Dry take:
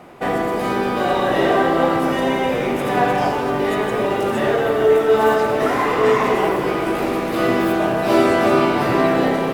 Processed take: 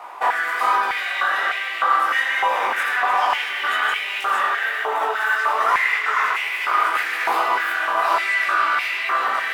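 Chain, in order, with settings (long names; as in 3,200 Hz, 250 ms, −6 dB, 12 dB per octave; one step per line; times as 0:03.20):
0:03.22–0:03.98: parametric band 3,100 Hz +9.5 dB 0.22 octaves
in parallel at +1 dB: compressor whose output falls as the input rises −23 dBFS, ratio −1
on the sum: chorus effect 1.2 Hz, delay 17 ms, depth 7.9 ms
bucket-brigade delay 140 ms, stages 4,096, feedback 83%, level −13 dB
high-pass on a step sequencer 3.3 Hz 950–2,300 Hz
level −4 dB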